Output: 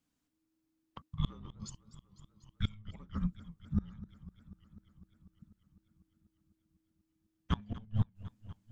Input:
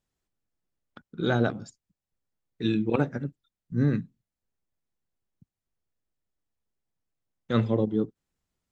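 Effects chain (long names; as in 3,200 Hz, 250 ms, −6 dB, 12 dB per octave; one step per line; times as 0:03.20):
in parallel at −9 dB: hard clipping −19.5 dBFS, distortion −13 dB
on the sum: frequency shifter −320 Hz
gate with flip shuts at −16 dBFS, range −27 dB
feedback echo with a swinging delay time 248 ms, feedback 75%, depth 181 cents, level −17 dB
level −2 dB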